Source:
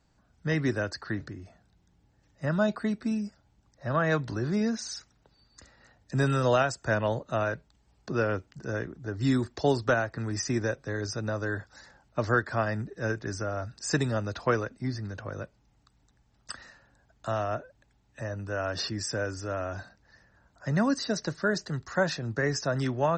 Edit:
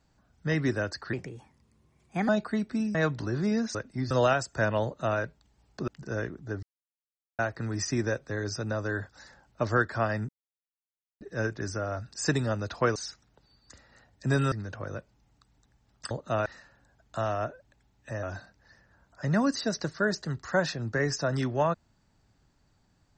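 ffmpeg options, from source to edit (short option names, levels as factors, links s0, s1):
-filter_complex "[0:a]asplit=15[s0][s1][s2][s3][s4][s5][s6][s7][s8][s9][s10][s11][s12][s13][s14];[s0]atrim=end=1.134[s15];[s1]atrim=start=1.13:end=2.6,asetpts=PTS-STARTPTS,asetrate=56007,aresample=44100[s16];[s2]atrim=start=2.596:end=3.262[s17];[s3]atrim=start=4.038:end=4.842[s18];[s4]atrim=start=14.608:end=14.972[s19];[s5]atrim=start=6.398:end=8.172[s20];[s6]atrim=start=8.448:end=9.2,asetpts=PTS-STARTPTS,afade=t=out:st=0.748:d=0.004:c=hsin[s21];[s7]atrim=start=9.2:end=9.96,asetpts=PTS-STARTPTS,volume=0[s22];[s8]atrim=start=9.96:end=12.86,asetpts=PTS-STARTPTS,afade=t=in:d=0.004:c=hsin,afade=t=out:st=2.896:d=0.004:c=hsin,apad=pad_dur=0.92[s23];[s9]atrim=start=12.86:end=14.612,asetpts=PTS-STARTPTS,afade=t=in:d=0.004:c=hsin[s24];[s10]atrim=start=4.838:end=6.402[s25];[s11]atrim=start=14.968:end=16.562[s26];[s12]atrim=start=7.128:end=7.482[s27];[s13]atrim=start=16.558:end=18.332[s28];[s14]atrim=start=19.658[s29];[s15][s16]acrossfade=d=0.004:c1=hsin:c2=hsin[s30];[s30][s17]acrossfade=d=0.004:c1=hsin:c2=hsin[s31];[s31][s18]acrossfade=d=0.004:c1=hsin:c2=hsin[s32];[s32][s19]acrossfade=d=0.004:c1=hsin:c2=hsin[s33];[s33][s20]acrossfade=d=0.004:c1=hsin:c2=hsin[s34];[s21][s22][s23][s24]concat=n=4:v=0:a=1[s35];[s34][s35]acrossfade=d=0.004:c1=hsin:c2=hsin[s36];[s36][s25]acrossfade=d=0.004:c1=hsin:c2=hsin[s37];[s37][s26]acrossfade=d=0.004:c1=hsin:c2=hsin[s38];[s38][s27]acrossfade=d=0.004:c1=hsin:c2=hsin[s39];[s39][s28]acrossfade=d=0.004:c1=hsin:c2=hsin[s40];[s40][s29]acrossfade=d=0.004:c1=hsin:c2=hsin"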